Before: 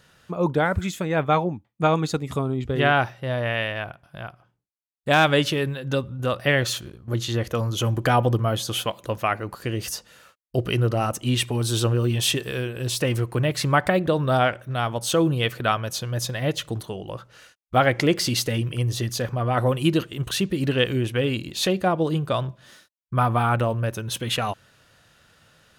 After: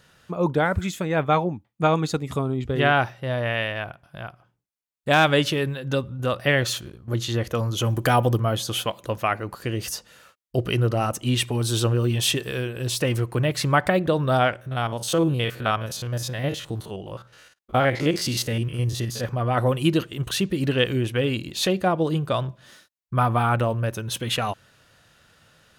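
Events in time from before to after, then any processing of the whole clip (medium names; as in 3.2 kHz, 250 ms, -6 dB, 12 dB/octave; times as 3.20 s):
7.90–8.40 s: treble shelf 7.9 kHz +11 dB
14.56–19.24 s: spectrogram pixelated in time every 50 ms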